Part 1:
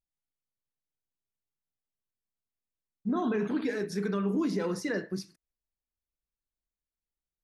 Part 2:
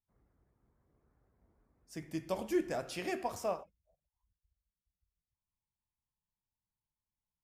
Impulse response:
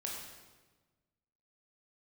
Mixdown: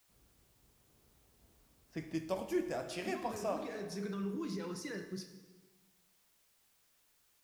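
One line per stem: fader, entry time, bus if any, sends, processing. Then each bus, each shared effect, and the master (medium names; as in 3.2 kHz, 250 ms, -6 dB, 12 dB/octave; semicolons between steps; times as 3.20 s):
-11.0 dB, 0.00 s, send -3.5 dB, peak limiter -23.5 dBFS, peak gain reduction 3.5 dB; fifteen-band graphic EQ 250 Hz -7 dB, 630 Hz -11 dB, 1.6 kHz -5 dB
-3.5 dB, 0.00 s, send -3.5 dB, level-controlled noise filter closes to 1.6 kHz, open at -36 dBFS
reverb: on, RT60 1.3 s, pre-delay 17 ms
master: gain riding within 3 dB 0.5 s; word length cut 12-bit, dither triangular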